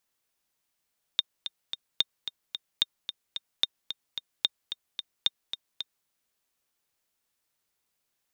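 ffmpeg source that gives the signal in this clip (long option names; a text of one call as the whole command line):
ffmpeg -f lavfi -i "aevalsrc='pow(10,(-9-10.5*gte(mod(t,3*60/221),60/221))/20)*sin(2*PI*3660*mod(t,60/221))*exp(-6.91*mod(t,60/221)/0.03)':duration=4.88:sample_rate=44100" out.wav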